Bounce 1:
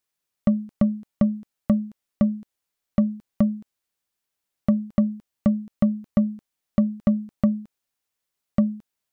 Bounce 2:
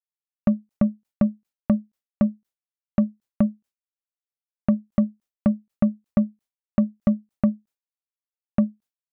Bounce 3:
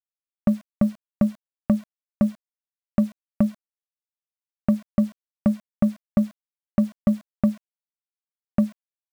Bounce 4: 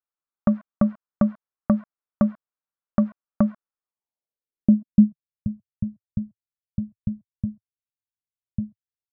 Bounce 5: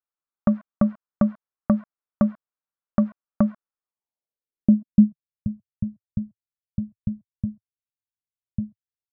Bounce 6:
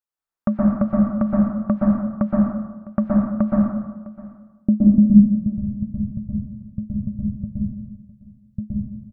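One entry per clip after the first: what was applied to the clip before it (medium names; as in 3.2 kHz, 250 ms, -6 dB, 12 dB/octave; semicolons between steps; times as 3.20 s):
expander -39 dBFS; endings held to a fixed fall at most 340 dB/s
bit crusher 8-bit
low-pass sweep 1.3 kHz -> 110 Hz, 3.81–5.37 s
no audible change
delay 656 ms -19.5 dB; plate-style reverb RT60 1.1 s, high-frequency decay 0.3×, pre-delay 110 ms, DRR -4.5 dB; trim -1.5 dB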